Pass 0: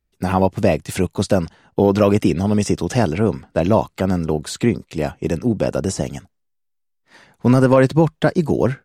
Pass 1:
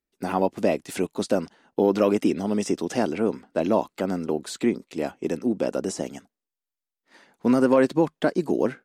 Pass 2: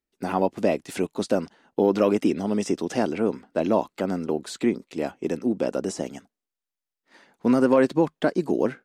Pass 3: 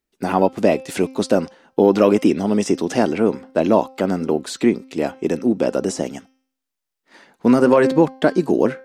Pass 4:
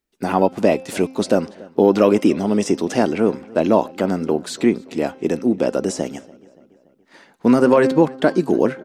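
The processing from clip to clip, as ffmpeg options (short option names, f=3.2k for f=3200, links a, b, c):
-af "lowshelf=f=170:t=q:w=1.5:g=-13,volume=-6.5dB"
-af "highshelf=f=8.4k:g=-4.5"
-af "bandreject=f=262.9:t=h:w=4,bandreject=f=525.8:t=h:w=4,bandreject=f=788.7:t=h:w=4,bandreject=f=1.0516k:t=h:w=4,bandreject=f=1.3145k:t=h:w=4,bandreject=f=1.5774k:t=h:w=4,bandreject=f=1.8403k:t=h:w=4,bandreject=f=2.1032k:t=h:w=4,bandreject=f=2.3661k:t=h:w=4,bandreject=f=2.629k:t=h:w=4,bandreject=f=2.8919k:t=h:w=4,bandreject=f=3.1548k:t=h:w=4,bandreject=f=3.4177k:t=h:w=4,bandreject=f=3.6806k:t=h:w=4,bandreject=f=3.9435k:t=h:w=4,bandreject=f=4.2064k:t=h:w=4,bandreject=f=4.4693k:t=h:w=4,bandreject=f=4.7322k:t=h:w=4,bandreject=f=4.9951k:t=h:w=4,bandreject=f=5.258k:t=h:w=4,bandreject=f=5.5209k:t=h:w=4,bandreject=f=5.7838k:t=h:w=4,bandreject=f=6.0467k:t=h:w=4,volume=6.5dB"
-filter_complex "[0:a]asplit=2[a][b];[b]adelay=286,lowpass=f=4k:p=1,volume=-22.5dB,asplit=2[c][d];[d]adelay=286,lowpass=f=4k:p=1,volume=0.55,asplit=2[e][f];[f]adelay=286,lowpass=f=4k:p=1,volume=0.55,asplit=2[g][h];[h]adelay=286,lowpass=f=4k:p=1,volume=0.55[i];[a][c][e][g][i]amix=inputs=5:normalize=0"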